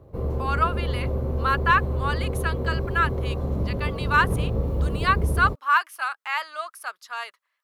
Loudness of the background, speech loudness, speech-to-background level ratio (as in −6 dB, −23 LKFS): −27.5 LKFS, −25.5 LKFS, 2.0 dB